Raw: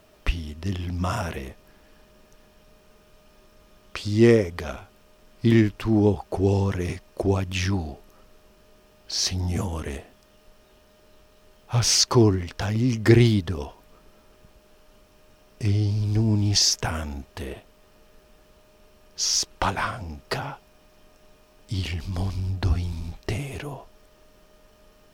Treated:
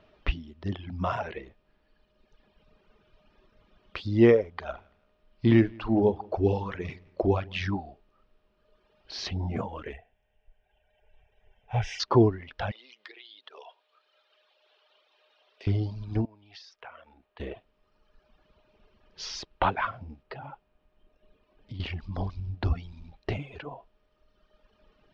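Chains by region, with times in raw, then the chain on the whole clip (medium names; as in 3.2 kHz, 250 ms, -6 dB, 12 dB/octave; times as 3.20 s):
4.57–7.67 s: doubling 44 ms -13 dB + feedback delay 169 ms, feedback 35%, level -16 dB
9.93–12.00 s: static phaser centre 1.2 kHz, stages 6 + comb 2.6 ms, depth 42%
12.71–15.67 s: high-pass 500 Hz 24 dB/octave + peaking EQ 3.6 kHz +10 dB + compression 20:1, threshold -37 dBFS
16.25–17.40 s: three-band isolator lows -15 dB, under 410 Hz, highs -14 dB, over 5.1 kHz + compression 2:1, threshold -47 dBFS + tape noise reduction on one side only decoder only
20.23–21.80 s: treble shelf 3.9 kHz -9 dB + compression 12:1, threshold -31 dBFS
whole clip: reverb removal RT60 1.9 s; low-pass 4 kHz 24 dB/octave; dynamic bell 690 Hz, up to +5 dB, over -40 dBFS, Q 0.76; trim -3.5 dB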